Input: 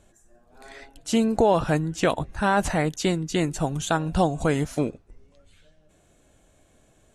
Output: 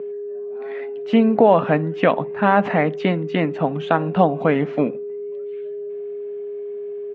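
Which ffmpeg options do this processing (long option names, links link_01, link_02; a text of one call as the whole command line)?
ffmpeg -i in.wav -filter_complex "[0:a]aeval=exprs='val(0)+0.0316*sin(2*PI*410*n/s)':channel_layout=same,highpass=frequency=180:width=0.5412,highpass=frequency=180:width=1.3066,equalizer=frequency=360:width_type=q:width=4:gain=-9,equalizer=frequency=870:width_type=q:width=4:gain=-3,equalizer=frequency=1500:width_type=q:width=4:gain=-5,lowpass=frequency=2500:width=0.5412,lowpass=frequency=2500:width=1.3066,asplit=2[link_01][link_02];[link_02]adelay=64,lowpass=frequency=1200:poles=1,volume=-20.5dB,asplit=2[link_03][link_04];[link_04]adelay=64,lowpass=frequency=1200:poles=1,volume=0.37,asplit=2[link_05][link_06];[link_06]adelay=64,lowpass=frequency=1200:poles=1,volume=0.37[link_07];[link_03][link_05][link_07]amix=inputs=3:normalize=0[link_08];[link_01][link_08]amix=inputs=2:normalize=0,volume=8dB" out.wav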